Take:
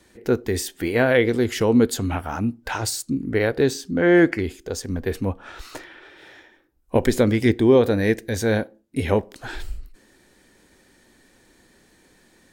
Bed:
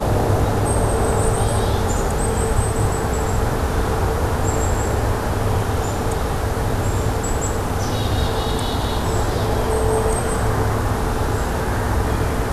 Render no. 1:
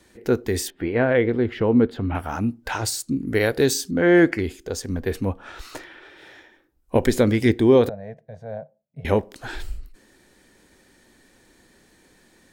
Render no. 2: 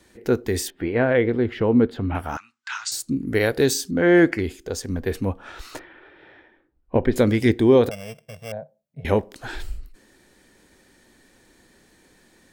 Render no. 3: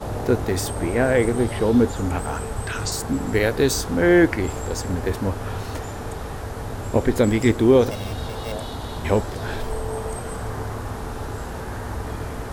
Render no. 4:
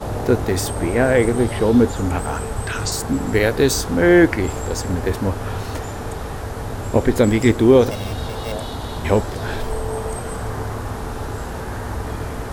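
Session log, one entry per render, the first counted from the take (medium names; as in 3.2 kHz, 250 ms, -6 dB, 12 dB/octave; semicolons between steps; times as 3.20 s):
0.70–2.15 s: distance through air 420 m; 3.27–3.91 s: treble shelf 4.8 kHz +12 dB; 7.89–9.05 s: two resonant band-passes 310 Hz, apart 2.1 oct
2.37–2.92 s: elliptic band-pass 1.2–7.5 kHz; 5.79–7.16 s: distance through air 410 m; 7.91–8.52 s: sorted samples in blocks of 16 samples
add bed -10 dB
trim +3 dB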